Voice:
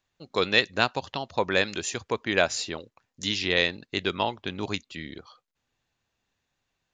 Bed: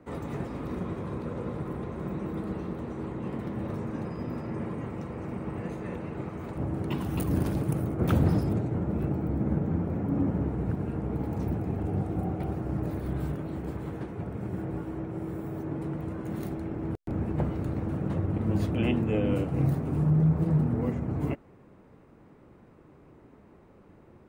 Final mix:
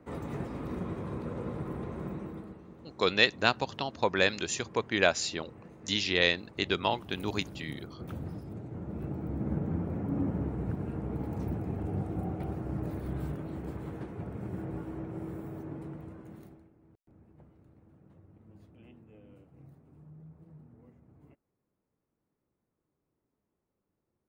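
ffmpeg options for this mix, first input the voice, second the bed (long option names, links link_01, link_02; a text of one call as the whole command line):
ffmpeg -i stem1.wav -i stem2.wav -filter_complex "[0:a]adelay=2650,volume=-2dB[link_01];[1:a]volume=9.5dB,afade=type=out:start_time=1.97:duration=0.61:silence=0.211349,afade=type=in:start_time=8.45:duration=1.19:silence=0.251189,afade=type=out:start_time=15.24:duration=1.47:silence=0.0562341[link_02];[link_01][link_02]amix=inputs=2:normalize=0" out.wav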